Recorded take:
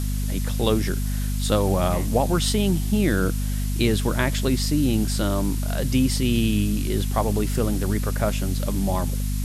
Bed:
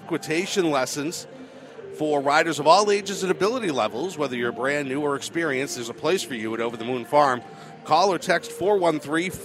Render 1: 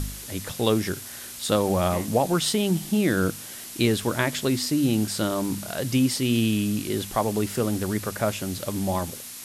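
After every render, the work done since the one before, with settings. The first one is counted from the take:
hum removal 50 Hz, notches 5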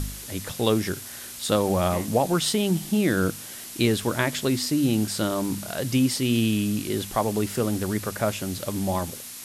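no processing that can be heard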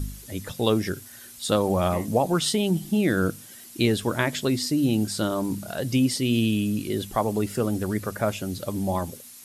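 broadband denoise 10 dB, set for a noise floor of −39 dBFS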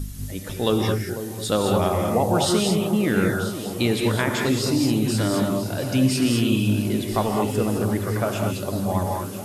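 on a send: delay that swaps between a low-pass and a high-pass 496 ms, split 950 Hz, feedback 72%, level −10.5 dB
on the sum: reverb whose tail is shaped and stops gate 240 ms rising, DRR 1 dB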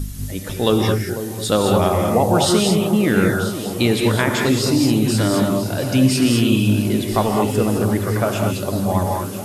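level +4.5 dB

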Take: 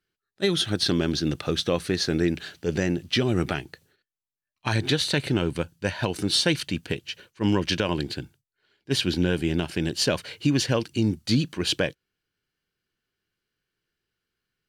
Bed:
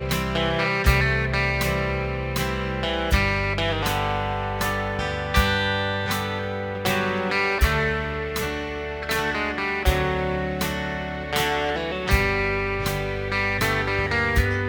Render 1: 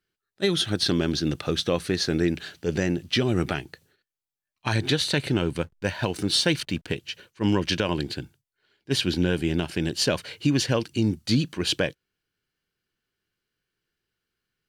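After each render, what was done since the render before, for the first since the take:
0:05.62–0:06.93: slack as between gear wheels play −46.5 dBFS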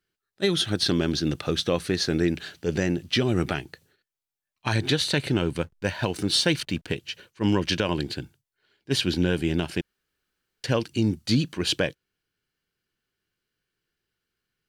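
0:09.81–0:10.64: fill with room tone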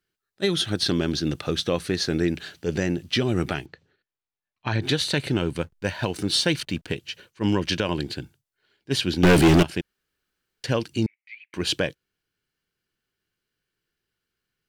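0:03.66–0:04.82: high-frequency loss of the air 170 metres
0:09.23–0:09.63: leveller curve on the samples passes 5
0:11.06–0:11.54: flat-topped band-pass 2,200 Hz, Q 5.1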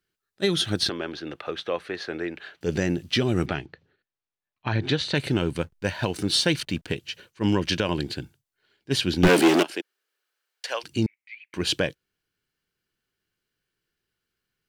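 0:00.89–0:02.61: three-way crossover with the lows and the highs turned down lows −18 dB, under 400 Hz, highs −19 dB, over 3,000 Hz
0:03.46–0:05.15: high-frequency loss of the air 110 metres
0:09.27–0:10.83: high-pass filter 220 Hz → 650 Hz 24 dB per octave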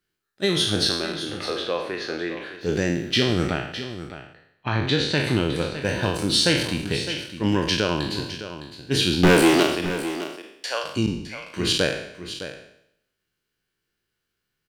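peak hold with a decay on every bin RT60 0.73 s
single-tap delay 610 ms −12 dB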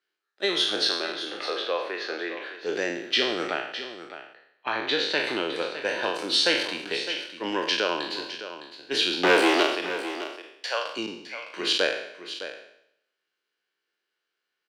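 high-pass filter 210 Hz 12 dB per octave
three-way crossover with the lows and the highs turned down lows −20 dB, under 350 Hz, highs −14 dB, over 5,600 Hz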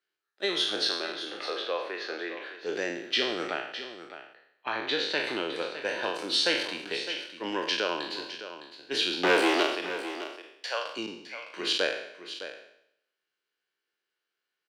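level −3.5 dB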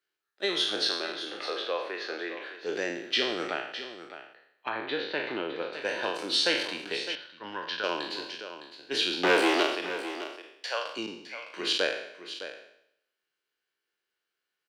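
0:04.69–0:05.73: high-frequency loss of the air 280 metres
0:07.15–0:07.84: drawn EQ curve 120 Hz 0 dB, 340 Hz −12 dB, 1,500 Hz +1 dB, 2,300 Hz −11 dB, 3,900 Hz −3 dB, 7,800 Hz −21 dB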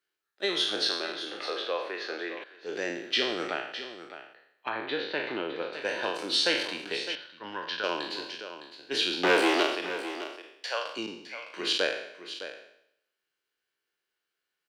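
0:02.44–0:02.89: fade in linear, from −14.5 dB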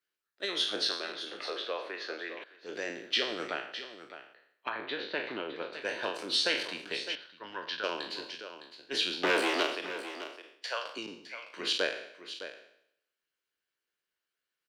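notch filter 800 Hz, Q 12
harmonic and percussive parts rebalanced harmonic −10 dB

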